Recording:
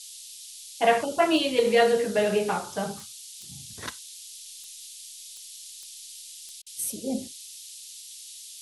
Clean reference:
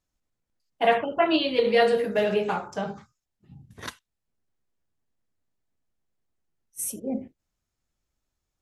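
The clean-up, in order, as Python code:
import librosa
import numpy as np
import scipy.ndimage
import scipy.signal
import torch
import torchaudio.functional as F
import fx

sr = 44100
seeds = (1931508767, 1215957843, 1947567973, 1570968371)

y = fx.fix_declick_ar(x, sr, threshold=10.0)
y = fx.fix_interpolate(y, sr, at_s=(6.62,), length_ms=43.0)
y = fx.noise_reduce(y, sr, print_start_s=6.22, print_end_s=6.72, reduce_db=30.0)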